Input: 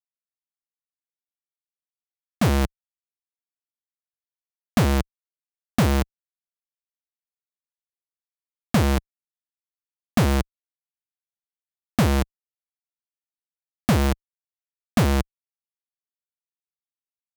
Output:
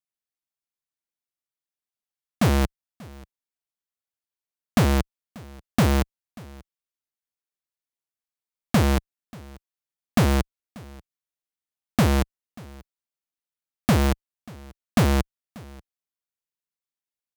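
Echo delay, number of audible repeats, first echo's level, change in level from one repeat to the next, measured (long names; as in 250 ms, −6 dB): 587 ms, 1, −23.0 dB, repeats not evenly spaced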